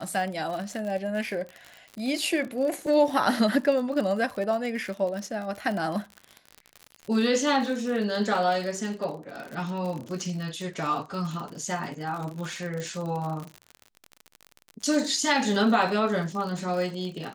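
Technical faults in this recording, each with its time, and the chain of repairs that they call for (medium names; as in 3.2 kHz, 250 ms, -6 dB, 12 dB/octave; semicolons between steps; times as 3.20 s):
crackle 55 per s -32 dBFS
12.80 s: pop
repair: de-click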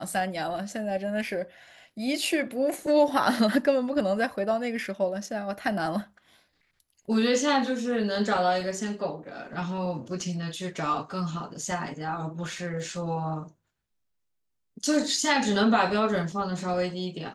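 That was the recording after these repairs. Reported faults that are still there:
12.80 s: pop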